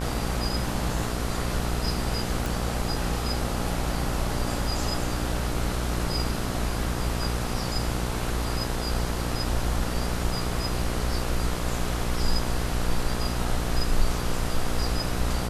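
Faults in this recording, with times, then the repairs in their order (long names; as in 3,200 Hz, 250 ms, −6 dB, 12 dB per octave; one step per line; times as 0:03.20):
mains buzz 60 Hz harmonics 24 −30 dBFS
0:02.46: click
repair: click removal
hum removal 60 Hz, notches 24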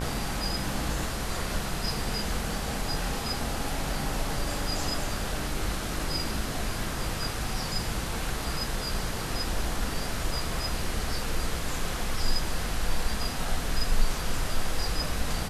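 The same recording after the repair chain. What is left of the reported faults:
none of them is left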